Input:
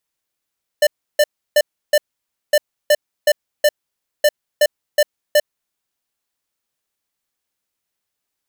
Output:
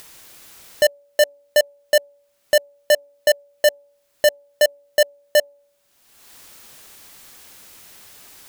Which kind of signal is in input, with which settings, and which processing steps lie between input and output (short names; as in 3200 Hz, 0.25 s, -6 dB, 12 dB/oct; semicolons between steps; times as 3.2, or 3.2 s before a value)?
beep pattern square 595 Hz, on 0.05 s, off 0.32 s, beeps 4, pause 0.55 s, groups 3, -11.5 dBFS
de-hum 285.7 Hz, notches 3; upward compressor, threshold -18 dBFS